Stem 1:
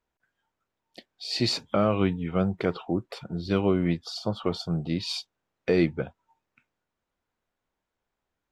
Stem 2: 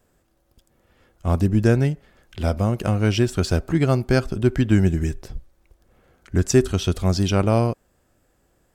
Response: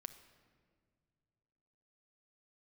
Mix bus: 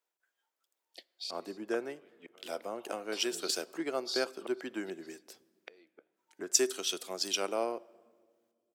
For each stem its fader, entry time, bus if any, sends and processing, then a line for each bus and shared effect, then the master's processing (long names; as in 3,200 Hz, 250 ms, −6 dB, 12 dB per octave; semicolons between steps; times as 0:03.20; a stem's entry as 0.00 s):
−6.5 dB, 0.00 s, send −7 dB, high-shelf EQ 3,200 Hz +7 dB; gate with flip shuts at −20 dBFS, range −31 dB; amplitude modulation by smooth noise, depth 55%
−4.5 dB, 0.05 s, send −4.5 dB, downward compressor 2.5 to 1, threshold −29 dBFS, peak gain reduction 13 dB; multiband upward and downward expander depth 100%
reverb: on, pre-delay 6 ms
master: high-pass filter 350 Hz 24 dB per octave; high-shelf EQ 8,100 Hz +5 dB